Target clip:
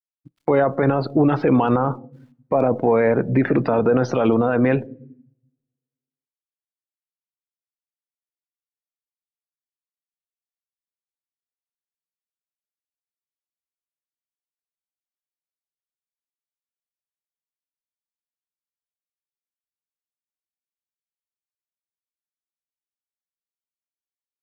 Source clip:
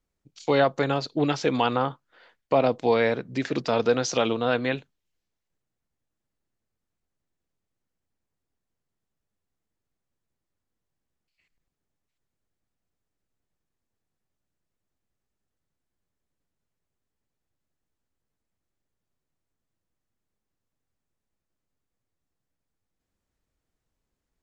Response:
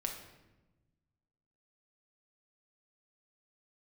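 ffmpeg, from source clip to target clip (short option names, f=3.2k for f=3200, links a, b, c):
-filter_complex "[0:a]lowpass=1.7k,agate=range=-8dB:threshold=-48dB:ratio=16:detection=peak,asplit=2[a][b];[b]acompressor=threshold=-33dB:ratio=6,volume=1.5dB[c];[a][c]amix=inputs=2:normalize=0,alimiter=limit=-20dB:level=0:latency=1:release=27,lowshelf=f=95:g=4,aeval=exprs='val(0)*gte(abs(val(0)),0.0015)':c=same,asplit=2[d][e];[e]equalizer=f=300:w=0.86:g=5.5[f];[1:a]atrim=start_sample=2205[g];[f][g]afir=irnorm=-1:irlink=0,volume=-14.5dB[h];[d][h]amix=inputs=2:normalize=0,afftdn=nr=19:nf=-45,acontrast=80,volume=2.5dB" -ar 44100 -c:a aac -b:a 128k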